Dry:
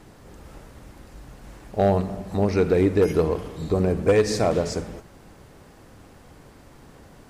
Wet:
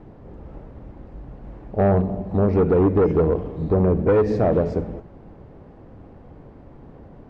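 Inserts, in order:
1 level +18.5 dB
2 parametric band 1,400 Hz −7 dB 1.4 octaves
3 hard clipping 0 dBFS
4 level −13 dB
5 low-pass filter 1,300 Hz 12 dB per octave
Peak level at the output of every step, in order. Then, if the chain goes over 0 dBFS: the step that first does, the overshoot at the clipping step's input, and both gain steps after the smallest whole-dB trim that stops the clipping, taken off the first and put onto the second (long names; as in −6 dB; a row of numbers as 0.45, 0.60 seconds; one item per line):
+7.5, +7.5, 0.0, −13.0, −12.5 dBFS
step 1, 7.5 dB
step 1 +10.5 dB, step 4 −5 dB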